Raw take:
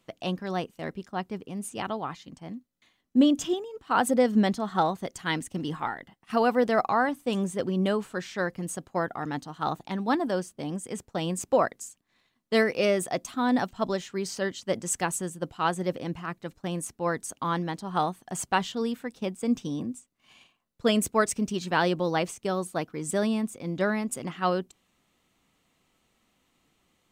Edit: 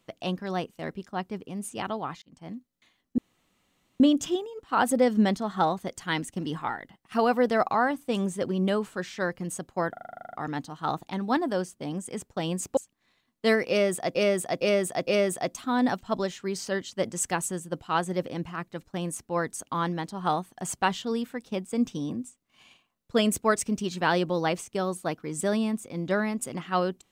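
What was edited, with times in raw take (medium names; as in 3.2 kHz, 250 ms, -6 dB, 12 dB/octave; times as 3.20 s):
2.22–2.49 s: fade in
3.18 s: insert room tone 0.82 s
9.11 s: stutter 0.04 s, 11 plays
11.55–11.85 s: delete
12.77–13.23 s: loop, 4 plays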